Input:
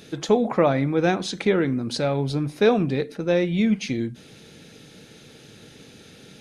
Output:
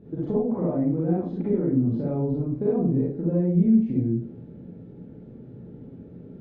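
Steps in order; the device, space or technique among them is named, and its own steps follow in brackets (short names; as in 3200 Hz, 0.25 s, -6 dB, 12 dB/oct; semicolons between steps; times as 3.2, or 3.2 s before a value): television next door (compressor 4:1, threshold -25 dBFS, peak gain reduction 10.5 dB; LPF 370 Hz 12 dB/oct; reverb RT60 0.45 s, pre-delay 34 ms, DRR -7.5 dB)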